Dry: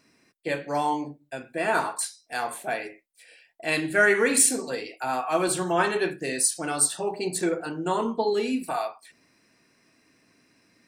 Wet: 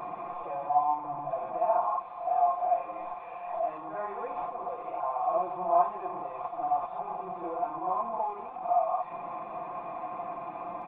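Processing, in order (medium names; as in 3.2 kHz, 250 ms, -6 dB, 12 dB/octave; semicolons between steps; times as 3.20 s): one-bit delta coder 32 kbps, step -20.5 dBFS; cascade formant filter a; comb 5.8 ms, depth 93%; reverse echo 61 ms -7 dB; trim +3 dB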